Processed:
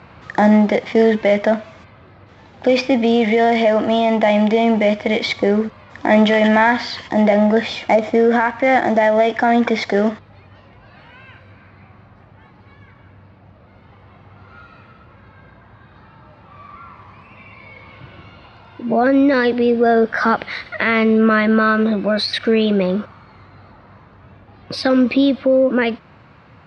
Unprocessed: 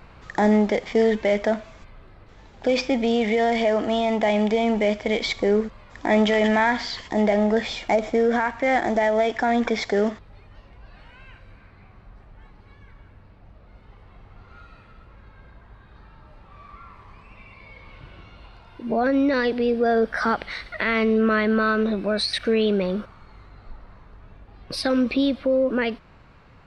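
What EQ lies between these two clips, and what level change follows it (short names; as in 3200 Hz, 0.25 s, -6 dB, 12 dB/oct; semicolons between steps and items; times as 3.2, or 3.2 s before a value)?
HPF 82 Hz 24 dB/oct; air absorption 97 m; notch 420 Hz, Q 12; +7.0 dB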